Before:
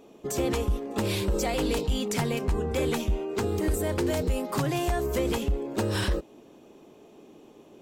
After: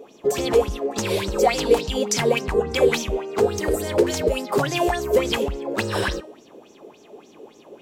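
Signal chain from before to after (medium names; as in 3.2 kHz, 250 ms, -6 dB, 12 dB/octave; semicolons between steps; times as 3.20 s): bass shelf 67 Hz -8.5 dB; de-hum 312.2 Hz, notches 30; sweeping bell 3.5 Hz 430–6400 Hz +17 dB; trim +1.5 dB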